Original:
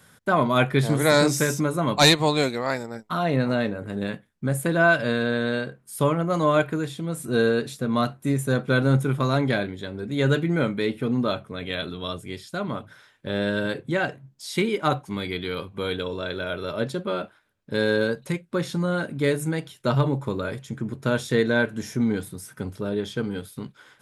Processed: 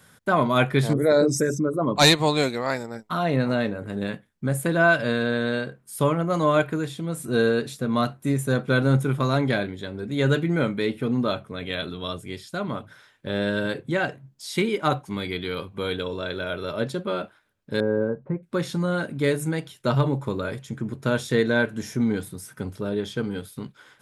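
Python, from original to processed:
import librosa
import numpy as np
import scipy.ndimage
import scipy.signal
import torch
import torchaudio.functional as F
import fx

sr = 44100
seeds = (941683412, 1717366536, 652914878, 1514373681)

y = fx.envelope_sharpen(x, sr, power=2.0, at=(0.93, 1.96))
y = fx.bessel_lowpass(y, sr, hz=880.0, order=4, at=(17.8, 18.43))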